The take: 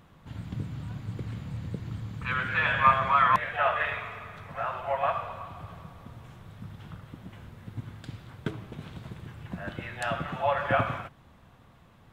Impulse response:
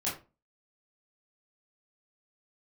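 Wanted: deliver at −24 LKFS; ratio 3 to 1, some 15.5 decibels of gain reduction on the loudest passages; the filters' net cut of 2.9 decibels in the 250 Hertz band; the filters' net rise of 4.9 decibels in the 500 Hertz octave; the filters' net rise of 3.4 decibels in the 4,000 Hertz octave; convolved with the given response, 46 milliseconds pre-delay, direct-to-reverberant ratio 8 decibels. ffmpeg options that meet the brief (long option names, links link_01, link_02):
-filter_complex "[0:a]equalizer=frequency=250:width_type=o:gain=-6.5,equalizer=frequency=500:width_type=o:gain=7.5,equalizer=frequency=4000:width_type=o:gain=4.5,acompressor=threshold=-36dB:ratio=3,asplit=2[link_01][link_02];[1:a]atrim=start_sample=2205,adelay=46[link_03];[link_02][link_03]afir=irnorm=-1:irlink=0,volume=-13.5dB[link_04];[link_01][link_04]amix=inputs=2:normalize=0,volume=14.5dB"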